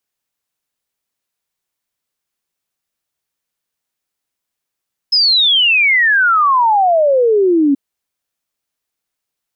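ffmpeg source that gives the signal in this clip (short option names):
-f lavfi -i "aevalsrc='0.376*clip(min(t,2.63-t)/0.01,0,1)*sin(2*PI*5200*2.63/log(270/5200)*(exp(log(270/5200)*t/2.63)-1))':d=2.63:s=44100"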